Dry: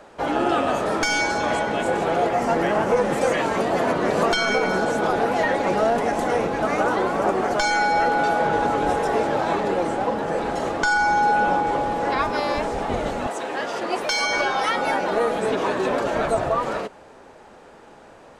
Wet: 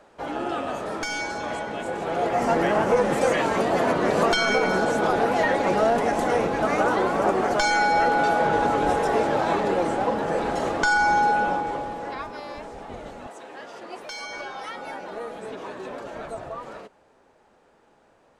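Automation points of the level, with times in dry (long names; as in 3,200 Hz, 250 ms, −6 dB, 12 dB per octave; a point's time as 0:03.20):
0:01.97 −7.5 dB
0:02.43 −0.5 dB
0:11.16 −0.5 dB
0:12.38 −13 dB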